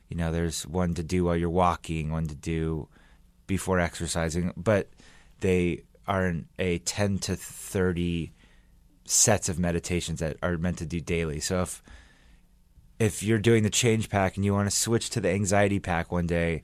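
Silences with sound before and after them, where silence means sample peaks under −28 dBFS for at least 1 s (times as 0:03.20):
0:11.74–0:13.00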